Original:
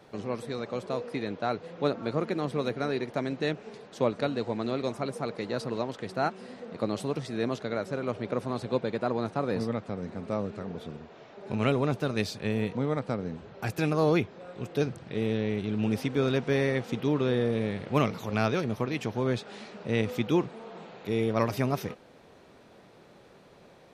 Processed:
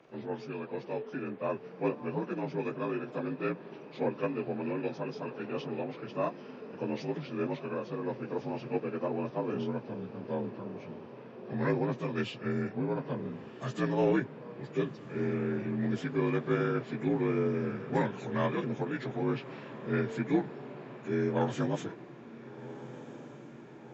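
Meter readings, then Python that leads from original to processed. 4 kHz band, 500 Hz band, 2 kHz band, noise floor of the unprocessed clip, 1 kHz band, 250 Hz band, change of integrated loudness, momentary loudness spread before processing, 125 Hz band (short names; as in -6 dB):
-9.5 dB, -3.5 dB, -4.0 dB, -55 dBFS, -4.0 dB, -2.5 dB, -3.5 dB, 10 LU, -4.5 dB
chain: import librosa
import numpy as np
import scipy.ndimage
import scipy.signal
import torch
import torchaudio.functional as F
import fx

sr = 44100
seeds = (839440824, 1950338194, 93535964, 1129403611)

p1 = fx.partial_stretch(x, sr, pct=84)
p2 = fx.low_shelf(p1, sr, hz=85.0, db=-6.0)
p3 = fx.cheby_harmonics(p2, sr, harmonics=(3,), levels_db=(-23,), full_scale_db=-15.0)
y = p3 + fx.echo_diffused(p3, sr, ms=1438, feedback_pct=62, wet_db=-15.5, dry=0)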